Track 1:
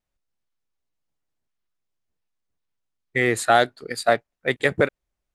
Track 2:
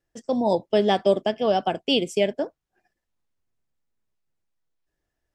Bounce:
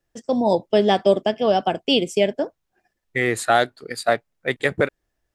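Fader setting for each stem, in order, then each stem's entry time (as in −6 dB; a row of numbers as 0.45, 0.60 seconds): −0.5, +3.0 decibels; 0.00, 0.00 seconds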